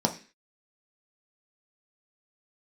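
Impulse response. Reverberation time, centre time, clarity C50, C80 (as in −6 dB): non-exponential decay, 10 ms, 13.0 dB, 18.5 dB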